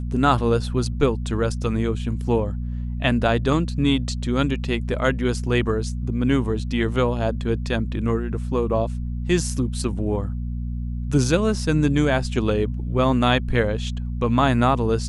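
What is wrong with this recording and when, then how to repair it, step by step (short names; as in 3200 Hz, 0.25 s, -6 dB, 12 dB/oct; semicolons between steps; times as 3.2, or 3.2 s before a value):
hum 60 Hz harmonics 4 -27 dBFS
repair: de-hum 60 Hz, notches 4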